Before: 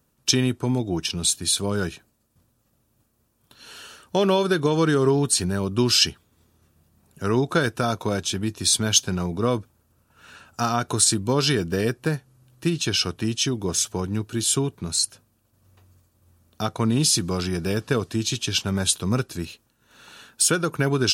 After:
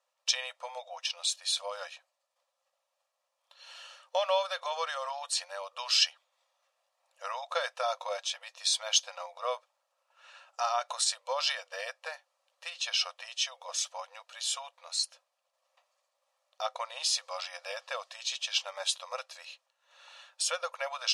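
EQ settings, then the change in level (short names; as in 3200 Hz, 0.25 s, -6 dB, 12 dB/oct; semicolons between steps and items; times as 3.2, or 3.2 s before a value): brick-wall FIR high-pass 500 Hz; LPF 5500 Hz 12 dB/oct; notch 1500 Hz, Q 5.8; -4.5 dB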